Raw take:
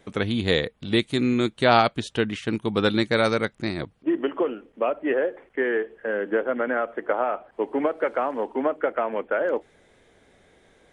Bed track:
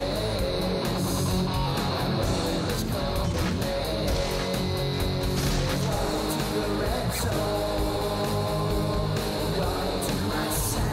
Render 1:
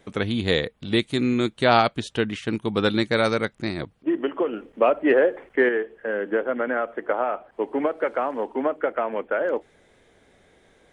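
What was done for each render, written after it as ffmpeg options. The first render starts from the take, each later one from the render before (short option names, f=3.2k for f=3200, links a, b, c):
-filter_complex "[0:a]asettb=1/sr,asplit=3[a][b][c];[a]atrim=end=4.534[d];[b]atrim=start=4.53:end=5.69,asetpts=PTS-STARTPTS,afade=t=in:d=0.004:c=qsin,afade=t=out:st=1.156:d=0.004:c=qsin,acontrast=44[e];[c]atrim=start=5.686[f];[d][e]acrossfade=d=0.004:c1=hsin:c2=qsin[g];[g][f]acrossfade=d=0.004:c1=qsin:c2=hsin"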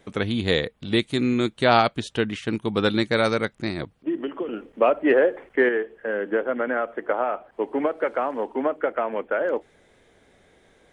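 -filter_complex "[0:a]asettb=1/sr,asplit=3[a][b][c];[a]atrim=end=3.984[d];[b]atrim=start=3.98:end=4.49,asetpts=PTS-STARTPTS,afade=t=in:d=0.004:c=qsin,afade=t=out:st=0.506:d=0.004:c=qsin,acrossover=split=340|3000[e][f][g];[f]acompressor=threshold=-33dB:ratio=6:attack=3.2:release=140:knee=2.83:detection=peak[h];[e][h][g]amix=inputs=3:normalize=0[i];[c]atrim=start=4.486[j];[d][i]acrossfade=d=0.004:c1=hsin:c2=qsin[k];[k][j]acrossfade=d=0.004:c1=qsin:c2=hsin"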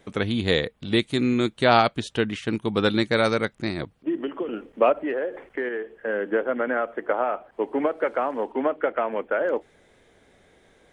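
-filter_complex "[0:a]asettb=1/sr,asplit=3[a][b][c];[a]atrim=end=4.924[d];[b]atrim=start=4.92:end=5.92,asetpts=PTS-STARTPTS,afade=t=in:d=0.004:c=qsin,afade=t=out:st=0.996:d=0.004:c=qsin,acompressor=threshold=-28dB:ratio=2.5:attack=3.2:release=140:knee=1:detection=peak[e];[c]atrim=start=5.916[f];[d][e]acrossfade=d=0.004:c1=hsin:c2=qsin[g];[g][f]acrossfade=d=0.004:c1=qsin:c2=hsin,asettb=1/sr,asplit=3[h][i][j];[h]atrim=end=8.524[k];[i]atrim=start=8.52:end=9.07,asetpts=PTS-STARTPTS,afade=t=in:d=0.004:c=qsin,afade=t=out:st=0.546:d=0.004:c=qsin,highshelf=f=4.8k:t=q:w=1.5:g=-8.5[l];[j]atrim=start=9.066[m];[k][l]acrossfade=d=0.004:c1=hsin:c2=qsin[n];[n][m]acrossfade=d=0.004:c1=qsin:c2=hsin"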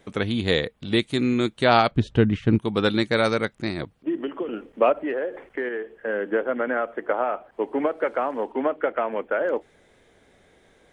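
-filter_complex "[0:a]asettb=1/sr,asplit=3[a][b][c];[a]atrim=end=1.914[d];[b]atrim=start=1.91:end=2.59,asetpts=PTS-STARTPTS,afade=t=in:d=0.004:c=qsin,afade=t=out:st=0.676:d=0.004:c=qsin,aemphasis=mode=reproduction:type=riaa[e];[c]atrim=start=2.586[f];[d][e]acrossfade=d=0.004:c1=hsin:c2=qsin[g];[g][f]acrossfade=d=0.004:c1=qsin:c2=hsin"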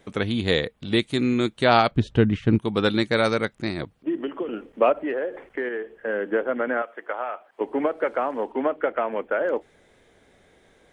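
-filter_complex "[0:a]asettb=1/sr,asplit=3[a][b][c];[a]atrim=end=6.824[d];[b]atrim=start=6.82:end=7.61,asetpts=PTS-STARTPTS,afade=t=in:d=0.004:c=qsin,afade=t=out:st=0.786:d=0.004:c=qsin,highpass=f=1.2k:p=1[e];[c]atrim=start=7.606[f];[d][e]acrossfade=d=0.004:c1=hsin:c2=qsin[g];[g][f]acrossfade=d=0.004:c1=qsin:c2=hsin"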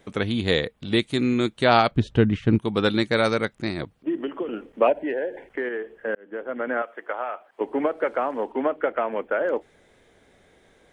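-filter_complex "[0:a]asettb=1/sr,asplit=3[a][b][c];[a]atrim=end=4.874[d];[b]atrim=start=4.87:end=5.49,asetpts=PTS-STARTPTS,afade=t=in:d=0.004:c=qsin,afade=t=out:st=0.616:d=0.004:c=qsin,asuperstop=centerf=1200:order=12:qfactor=2.7[e];[c]atrim=start=5.486[f];[d][e]acrossfade=d=0.004:c1=hsin:c2=qsin[g];[g][f]acrossfade=d=0.004:c1=qsin:c2=hsin,asplit=2[h][i];[h]atrim=end=6.15,asetpts=PTS-STARTPTS,afade=t=out:st=6.146:d=0.004:c=hsin[j];[i]atrim=start=6.15,asetpts=PTS-STARTPTS,afade=t=in:d=0.66[k];[j][k]concat=n=2:v=0:a=1"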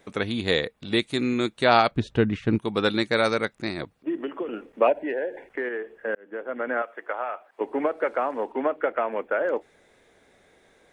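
-af "lowshelf=f=220:g=-7,bandreject=f=3.1k:w=14"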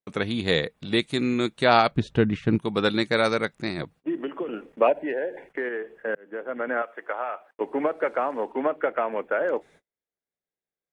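-af "agate=range=-39dB:threshold=-50dB:ratio=16:detection=peak,equalizer=f=160:t=o:w=0.33:g=7"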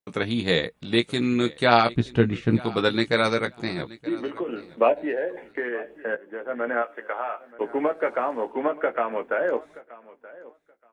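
-filter_complex "[0:a]asplit=2[a][b];[b]adelay=17,volume=-7.5dB[c];[a][c]amix=inputs=2:normalize=0,aecho=1:1:926|1852:0.1|0.018"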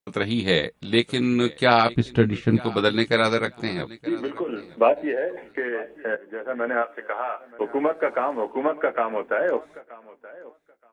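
-af "volume=1.5dB,alimiter=limit=-3dB:level=0:latency=1"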